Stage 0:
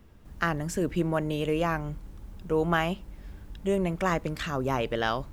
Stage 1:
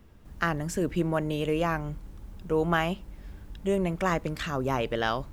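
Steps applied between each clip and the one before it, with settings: nothing audible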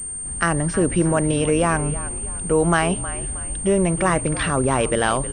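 in parallel at +2 dB: limiter -22 dBFS, peak gain reduction 9.5 dB; on the sum: frequency-shifting echo 0.315 s, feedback 38%, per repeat -52 Hz, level -14 dB; pulse-width modulation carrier 8700 Hz; gain +3 dB

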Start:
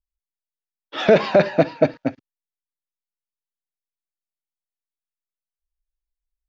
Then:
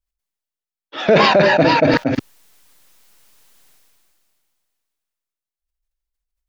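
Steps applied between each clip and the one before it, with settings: sustainer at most 22 dB/s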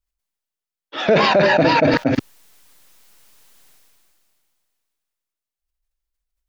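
limiter -7 dBFS, peak gain reduction 5.5 dB; gain +1 dB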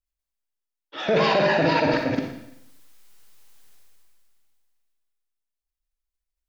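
Schroeder reverb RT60 0.8 s, DRR 2.5 dB; gain -7.5 dB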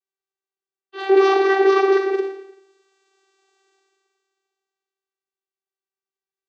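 vocoder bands 16, saw 388 Hz; gain +6 dB

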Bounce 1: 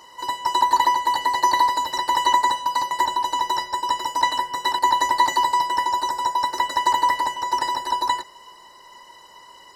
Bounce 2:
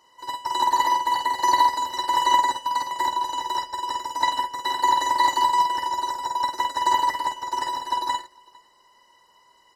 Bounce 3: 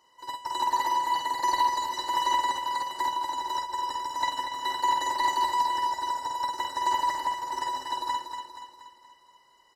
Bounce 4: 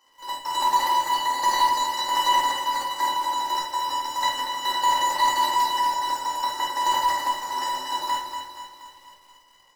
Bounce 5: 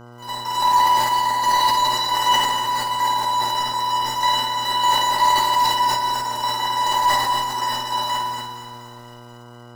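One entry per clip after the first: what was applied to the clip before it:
on a send: tapped delay 50/454 ms -3.5/-17.5 dB; on the sum: upward expander 1.5:1, over -36 dBFS; gain -1.5 dB
soft clip -9.5 dBFS, distortion -24 dB; on a send: feedback echo 0.238 s, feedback 51%, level -7.5 dB; on the sum: gain -5 dB
HPF 630 Hz 6 dB/oct; in parallel at -6 dB: companded quantiser 4-bit; on the sum: shoebox room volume 320 m³, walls furnished, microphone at 2.2 m
flutter echo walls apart 9.4 m, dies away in 0.7 s; buzz 120 Hz, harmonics 13, -45 dBFS -4 dB/oct; sustainer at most 37 dB/s; gain +2 dB

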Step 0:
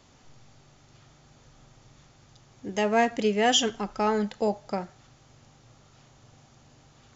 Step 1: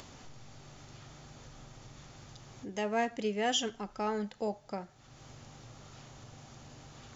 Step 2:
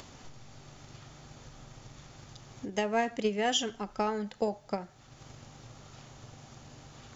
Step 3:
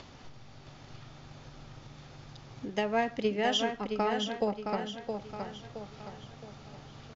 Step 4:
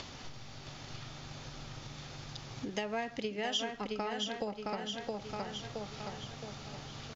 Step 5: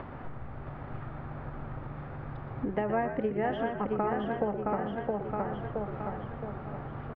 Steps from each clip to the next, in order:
upward compressor, threshold -30 dBFS; gain -8.5 dB
transient shaper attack +7 dB, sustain +3 dB
LPF 5300 Hz 24 dB/oct; on a send: feedback echo 0.668 s, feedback 43%, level -6 dB
compressor 4:1, threshold -38 dBFS, peak gain reduction 12.5 dB; high shelf 2300 Hz +8 dB; gain +2 dB
LPF 1600 Hz 24 dB/oct; frequency-shifting echo 0.12 s, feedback 43%, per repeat -68 Hz, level -9 dB; gain +7 dB

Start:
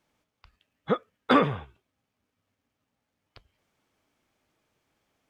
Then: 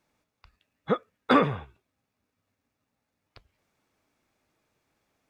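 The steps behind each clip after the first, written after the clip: notch 3100 Hz, Q 10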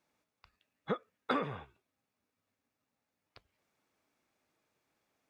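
low shelf 100 Hz -11.5 dB; compressor 5:1, threshold -25 dBFS, peak gain reduction 9 dB; gain -4.5 dB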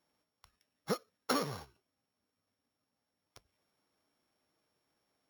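sample sorter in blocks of 8 samples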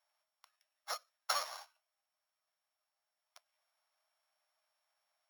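elliptic high-pass 620 Hz, stop band 40 dB; dynamic EQ 6400 Hz, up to +5 dB, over -59 dBFS, Q 0.85; gain -1 dB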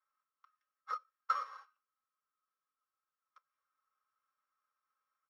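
double band-pass 710 Hz, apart 1.6 oct; comb 3.8 ms, depth 97%; gain +5.5 dB

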